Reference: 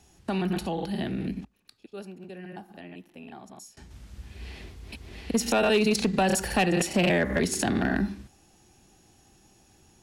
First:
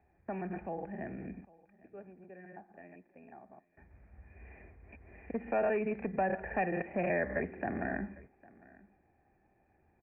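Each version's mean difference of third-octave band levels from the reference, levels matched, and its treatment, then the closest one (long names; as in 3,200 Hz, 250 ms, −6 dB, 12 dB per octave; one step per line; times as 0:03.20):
7.0 dB: Chebyshev low-pass with heavy ripple 2,500 Hz, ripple 9 dB
parametric band 77 Hz +7 dB 0.2 octaves
on a send: single-tap delay 804 ms −23 dB
on the sum: level −4.5 dB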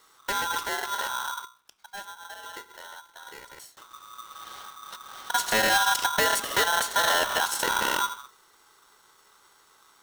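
12.5 dB: mains-hum notches 60/120/180/240 Hz
tape wow and flutter 15 cents
ring modulator with a square carrier 1,200 Hz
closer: first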